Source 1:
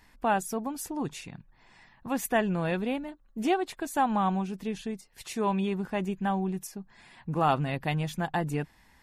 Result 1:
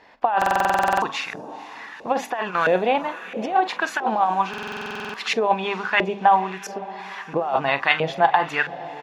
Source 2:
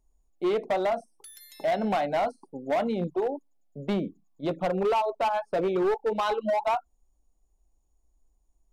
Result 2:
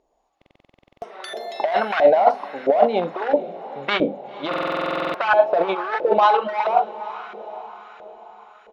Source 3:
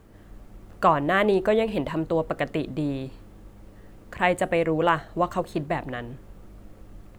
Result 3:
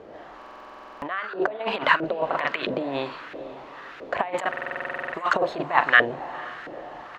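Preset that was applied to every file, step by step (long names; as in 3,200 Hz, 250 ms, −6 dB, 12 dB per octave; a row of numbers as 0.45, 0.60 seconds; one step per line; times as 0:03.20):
parametric band 8,600 Hz −10 dB 0.29 octaves
mains-hum notches 50/100/150/200/250 Hz
double-tracking delay 43 ms −14 dB
compressor whose output falls as the input rises −29 dBFS, ratio −0.5
feedback delay with all-pass diffusion 470 ms, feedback 57%, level −15.5 dB
auto-filter band-pass saw up 1.5 Hz 500–1,600 Hz
parametric band 4,000 Hz +13.5 dB 2.7 octaves
buffer that repeats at 0:00.37/0:04.49, samples 2,048, times 13
normalise the peak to −2 dBFS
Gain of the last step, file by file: +16.0, +17.0, +11.5 decibels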